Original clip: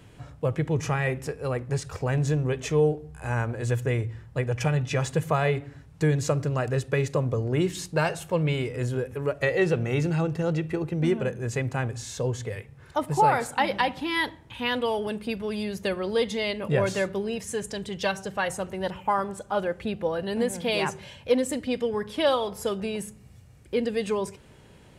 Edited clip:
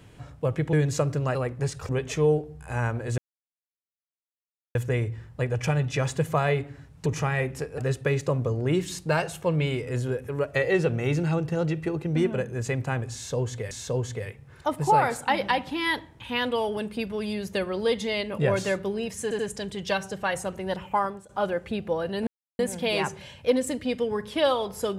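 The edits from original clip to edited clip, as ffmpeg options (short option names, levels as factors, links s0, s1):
-filter_complex "[0:a]asplit=12[s0][s1][s2][s3][s4][s5][s6][s7][s8][s9][s10][s11];[s0]atrim=end=0.732[s12];[s1]atrim=start=6.028:end=6.652[s13];[s2]atrim=start=1.448:end=1.992[s14];[s3]atrim=start=2.428:end=3.72,asetpts=PTS-STARTPTS,afade=t=out:st=1.288:d=0.004:c=hsin,apad=pad_dur=1.57[s15];[s4]atrim=start=3.72:end=6.032,asetpts=PTS-STARTPTS,afade=t=in:d=0.004:c=hsin[s16];[s5]atrim=start=0.728:end=1.452[s17];[s6]atrim=start=6.648:end=12.582[s18];[s7]atrim=start=12.008:end=17.612[s19];[s8]atrim=start=17.528:end=17.612[s20];[s9]atrim=start=17.528:end=19.43,asetpts=PTS-STARTPTS,afade=t=out:st=1.602:d=0.3:silence=0.125893[s21];[s10]atrim=start=19.43:end=20.41,asetpts=PTS-STARTPTS,afade=t=in:d=0.004:c=hsin:silence=0.125893,afade=t=out:st=0.976:d=0.004:c=hsin,apad=pad_dur=0.32[s22];[s11]atrim=start=20.41,asetpts=PTS-STARTPTS,afade=t=in:d=0.004:c=hsin[s23];[s12][s13]acrossfade=d=0.004:c1=hsin:c2=hsin[s24];[s24][s14]acrossfade=d=0.004:c1=hsin:c2=hsin[s25];[s15][s16]concat=n=2:v=0:a=1[s26];[s25][s26]acrossfade=d=0.004:c1=hsin:c2=hsin[s27];[s27][s17]acrossfade=d=0.004:c1=hsin:c2=hsin[s28];[s28][s18]acrossfade=d=0.004:c1=hsin:c2=hsin[s29];[s29][s19]acrossfade=d=0.004:c1=hsin:c2=hsin[s30];[s30][s20]acrossfade=d=0.004:c1=hsin:c2=hsin[s31];[s21][s22][s23]concat=n=3:v=0:a=1[s32];[s31][s32]acrossfade=d=0.004:c1=hsin:c2=hsin"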